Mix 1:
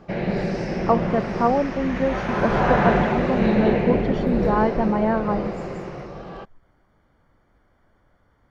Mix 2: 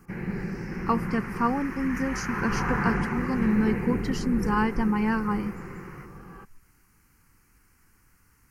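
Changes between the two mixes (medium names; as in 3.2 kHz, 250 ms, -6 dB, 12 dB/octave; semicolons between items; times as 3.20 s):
speech: remove Savitzky-Golay filter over 41 samples; first sound -5.0 dB; master: add static phaser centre 1.5 kHz, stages 4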